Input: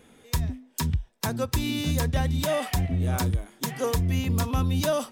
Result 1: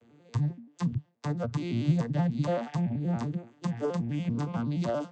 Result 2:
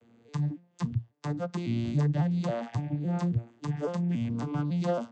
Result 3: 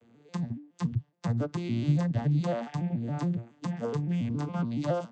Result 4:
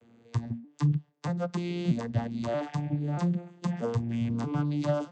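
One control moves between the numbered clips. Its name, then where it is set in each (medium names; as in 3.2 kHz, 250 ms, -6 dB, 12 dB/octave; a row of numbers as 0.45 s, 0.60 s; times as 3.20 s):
vocoder on a broken chord, a note every: 95 ms, 276 ms, 140 ms, 633 ms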